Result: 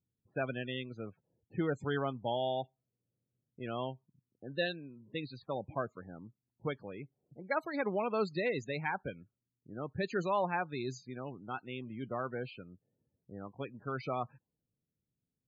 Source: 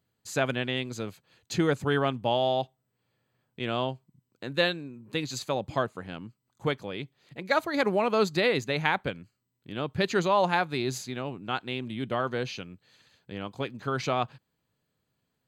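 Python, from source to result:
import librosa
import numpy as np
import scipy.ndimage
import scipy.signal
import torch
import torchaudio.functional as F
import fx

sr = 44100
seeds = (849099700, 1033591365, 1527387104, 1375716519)

y = fx.env_lowpass(x, sr, base_hz=330.0, full_db=-25.0)
y = fx.spec_topn(y, sr, count=32)
y = F.gain(torch.from_numpy(y), -8.0).numpy()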